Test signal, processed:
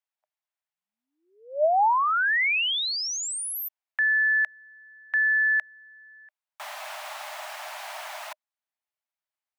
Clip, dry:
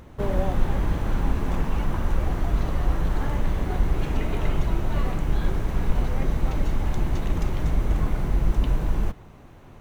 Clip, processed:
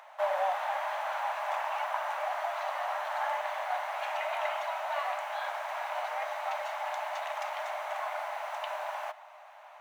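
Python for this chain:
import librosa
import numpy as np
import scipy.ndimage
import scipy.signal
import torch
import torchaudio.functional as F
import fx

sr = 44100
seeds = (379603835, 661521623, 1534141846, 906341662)

y = scipy.signal.sosfilt(scipy.signal.cheby1(6, 3, 600.0, 'highpass', fs=sr, output='sos'), x)
y = fx.high_shelf(y, sr, hz=2400.0, db=-11.5)
y = y * 10.0 ** (8.0 / 20.0)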